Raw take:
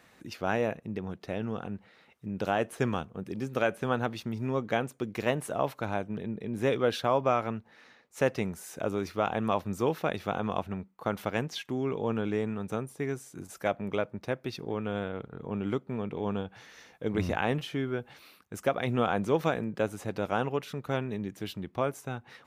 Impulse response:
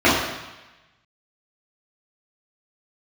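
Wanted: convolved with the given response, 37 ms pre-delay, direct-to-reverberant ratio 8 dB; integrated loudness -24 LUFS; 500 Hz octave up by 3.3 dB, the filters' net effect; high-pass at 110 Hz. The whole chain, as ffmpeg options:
-filter_complex "[0:a]highpass=110,equalizer=f=500:t=o:g=4,asplit=2[a][b];[1:a]atrim=start_sample=2205,adelay=37[c];[b][c]afir=irnorm=-1:irlink=0,volume=-33.5dB[d];[a][d]amix=inputs=2:normalize=0,volume=5.5dB"

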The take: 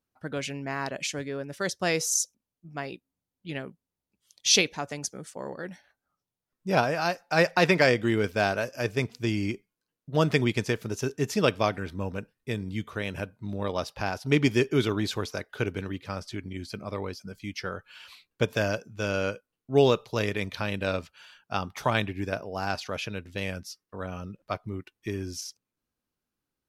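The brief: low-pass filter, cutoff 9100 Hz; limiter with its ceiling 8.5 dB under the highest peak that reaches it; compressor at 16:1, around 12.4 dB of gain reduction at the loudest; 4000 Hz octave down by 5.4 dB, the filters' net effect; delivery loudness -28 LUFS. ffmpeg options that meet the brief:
-af "lowpass=9.1k,equalizer=f=4k:t=o:g=-7,acompressor=threshold=-29dB:ratio=16,volume=10dB,alimiter=limit=-14.5dB:level=0:latency=1"

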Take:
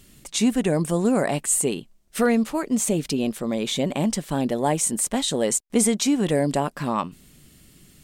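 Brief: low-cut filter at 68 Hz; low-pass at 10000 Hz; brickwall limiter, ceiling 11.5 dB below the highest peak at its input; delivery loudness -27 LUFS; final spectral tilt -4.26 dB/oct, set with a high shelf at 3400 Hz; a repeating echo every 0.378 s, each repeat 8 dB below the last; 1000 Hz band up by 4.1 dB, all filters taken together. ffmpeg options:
-af "highpass=68,lowpass=10k,equalizer=f=1k:t=o:g=6,highshelf=f=3.4k:g=-6,alimiter=limit=-18.5dB:level=0:latency=1,aecho=1:1:378|756|1134|1512|1890:0.398|0.159|0.0637|0.0255|0.0102,volume=1dB"

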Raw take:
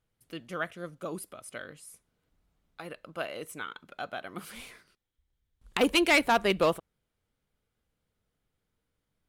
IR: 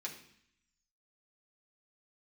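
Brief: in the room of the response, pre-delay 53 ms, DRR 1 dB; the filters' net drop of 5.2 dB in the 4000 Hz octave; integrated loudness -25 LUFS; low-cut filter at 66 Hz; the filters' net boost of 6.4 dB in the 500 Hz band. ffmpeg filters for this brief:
-filter_complex "[0:a]highpass=66,equalizer=f=500:t=o:g=8,equalizer=f=4k:t=o:g=-8,asplit=2[a][b];[1:a]atrim=start_sample=2205,adelay=53[c];[b][c]afir=irnorm=-1:irlink=0,volume=0dB[d];[a][d]amix=inputs=2:normalize=0,volume=-1dB"

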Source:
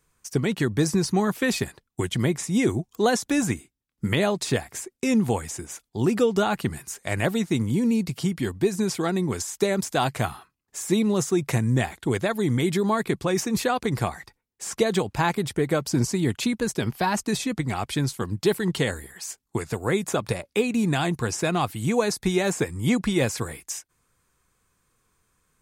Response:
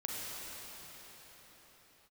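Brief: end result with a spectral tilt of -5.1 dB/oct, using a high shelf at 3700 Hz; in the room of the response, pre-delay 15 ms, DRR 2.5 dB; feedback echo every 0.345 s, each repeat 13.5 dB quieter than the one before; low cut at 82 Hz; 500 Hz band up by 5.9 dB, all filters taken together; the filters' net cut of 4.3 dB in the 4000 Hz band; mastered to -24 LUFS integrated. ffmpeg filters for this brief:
-filter_complex "[0:a]highpass=82,equalizer=f=500:t=o:g=7.5,highshelf=f=3.7k:g=3.5,equalizer=f=4k:t=o:g=-8,aecho=1:1:345|690:0.211|0.0444,asplit=2[a][b];[1:a]atrim=start_sample=2205,adelay=15[c];[b][c]afir=irnorm=-1:irlink=0,volume=-6dB[d];[a][d]amix=inputs=2:normalize=0,volume=-3.5dB"

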